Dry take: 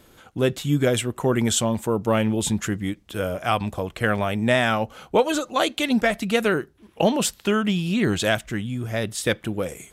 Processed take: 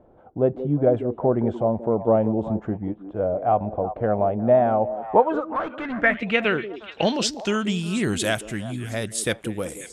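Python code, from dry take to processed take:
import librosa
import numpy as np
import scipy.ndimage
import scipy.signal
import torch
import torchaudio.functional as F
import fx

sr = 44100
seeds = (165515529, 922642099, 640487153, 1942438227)

y = fx.echo_stepped(x, sr, ms=180, hz=330.0, octaves=1.4, feedback_pct=70, wet_db=-8)
y = fx.clip_hard(y, sr, threshold_db=-24.5, at=(5.4, 6.03))
y = fx.filter_sweep_lowpass(y, sr, from_hz=700.0, to_hz=10000.0, start_s=4.92, end_s=8.02, q=2.8)
y = y * 10.0 ** (-2.5 / 20.0)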